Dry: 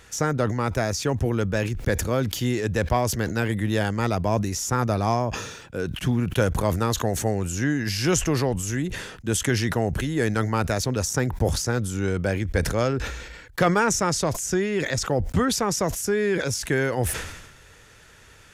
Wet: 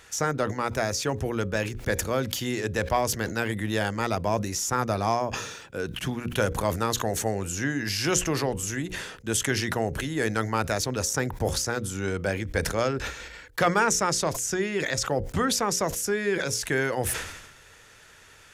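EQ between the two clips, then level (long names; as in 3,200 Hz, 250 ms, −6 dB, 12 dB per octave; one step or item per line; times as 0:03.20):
low-shelf EQ 310 Hz −6.5 dB
mains-hum notches 60/120/180/240/300/360/420/480/540 Hz
0.0 dB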